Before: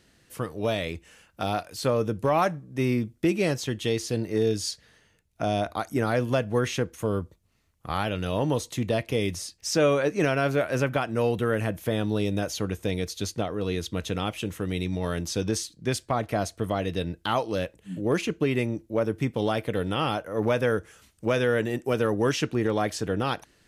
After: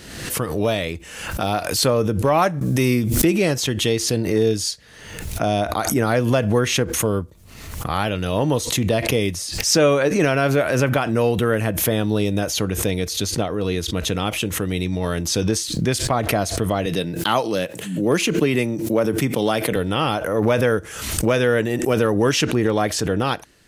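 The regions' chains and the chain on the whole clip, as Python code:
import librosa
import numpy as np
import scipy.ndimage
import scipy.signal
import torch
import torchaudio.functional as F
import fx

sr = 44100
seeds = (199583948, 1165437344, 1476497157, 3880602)

y = fx.chain(x, sr, fx.high_shelf(hz=3900.0, db=10.0),
    fx.pre_swell(db_per_s=28.0), at=(2.61, 3.25))
y = fx.chain(y, sr, fx.highpass(hz=120.0, slope=24),
    fx.high_shelf(hz=3900.0, db=4.5), at=(16.86, 19.76))
y = fx.high_shelf(y, sr, hz=7700.0, db=3.5)
y = fx.pre_swell(y, sr, db_per_s=52.0)
y = F.gain(torch.from_numpy(y), 5.5).numpy()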